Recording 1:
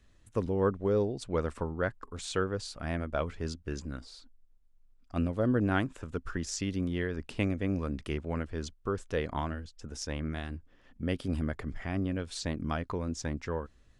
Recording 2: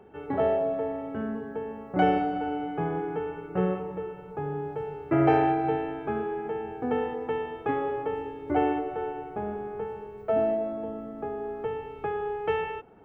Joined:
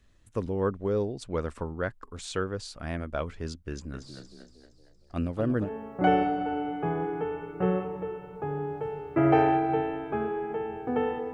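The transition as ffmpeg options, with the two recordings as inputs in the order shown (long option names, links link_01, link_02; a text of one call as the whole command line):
ffmpeg -i cue0.wav -i cue1.wav -filter_complex "[0:a]asettb=1/sr,asplit=3[link_01][link_02][link_03];[link_01]atrim=end=3.704[link_04];[link_02]atrim=start=3.7:end=5.7,asetpts=PTS-STARTPTS,afade=type=in:duration=0.004:curve=qsin,afade=type=out:start_time=1.996:duration=0.004:curve=qsin,asplit=7[link_05][link_06][link_07][link_08][link_09][link_10][link_11];[link_06]adelay=232,afreqshift=57,volume=-8dB[link_12];[link_07]adelay=464,afreqshift=114,volume=-13.8dB[link_13];[link_08]adelay=696,afreqshift=171,volume=-19.7dB[link_14];[link_09]adelay=928,afreqshift=228,volume=-25.5dB[link_15];[link_10]adelay=1160,afreqshift=285,volume=-31.4dB[link_16];[link_11]adelay=1392,afreqshift=342,volume=-37.2dB[link_17];[link_05][link_12][link_13][link_14][link_15][link_16][link_17]amix=inputs=7:normalize=0,atrim=end_sample=88200[link_18];[link_03]atrim=start=5.696[link_19];[link_04][link_18]acrossfade=duration=0.004:curve1=hsin:curve2=qsin[link_20];[link_20][link_19]acrossfade=duration=0.004:curve1=qsin:curve2=hsin,apad=whole_dur=11.33,atrim=end=11.33,atrim=end=5.7,asetpts=PTS-STARTPTS[link_21];[1:a]atrim=start=1.57:end=7.28,asetpts=PTS-STARTPTS[link_22];[link_21][link_22]acrossfade=duration=0.08:curve1=tri:curve2=tri" out.wav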